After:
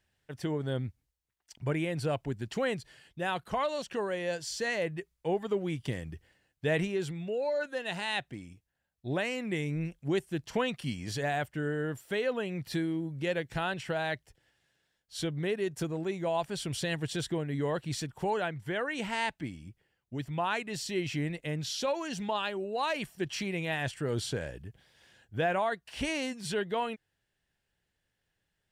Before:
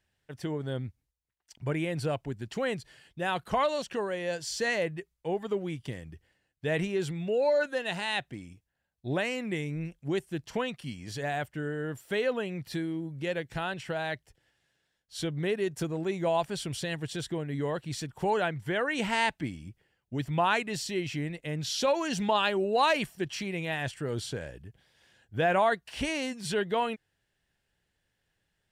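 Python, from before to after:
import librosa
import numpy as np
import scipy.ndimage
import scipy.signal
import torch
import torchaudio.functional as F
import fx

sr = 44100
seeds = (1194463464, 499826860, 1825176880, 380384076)

y = fx.rider(x, sr, range_db=10, speed_s=0.5)
y = y * librosa.db_to_amplitude(-2.0)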